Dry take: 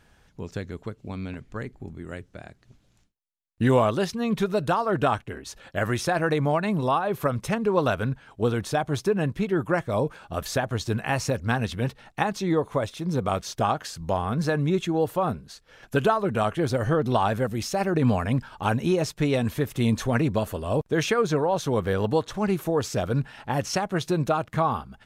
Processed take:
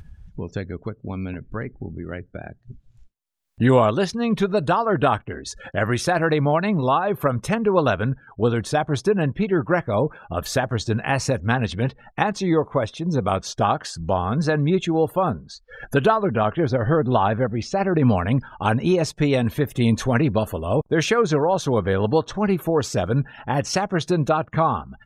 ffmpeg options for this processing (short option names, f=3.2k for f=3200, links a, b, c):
-filter_complex "[0:a]asettb=1/sr,asplit=3[a][b][c];[a]atrim=end=16.254[d];[b]atrim=start=16.25:end=18.1,asetpts=PTS-STARTPTS,afade=t=in:d=0.004:c=qsin,afade=t=out:st=1.846:d=0.004:c=qsin,lowpass=f=3.1k:p=1[e];[c]atrim=start=18.096[f];[d][e]acrossfade=d=0.004:c1=hsin:c2=qsin[g];[g][f]acrossfade=d=0.004:c1=qsin:c2=hsin,afftdn=nr=30:nf=-47,acompressor=mode=upward:threshold=-30dB:ratio=2.5,volume=4dB"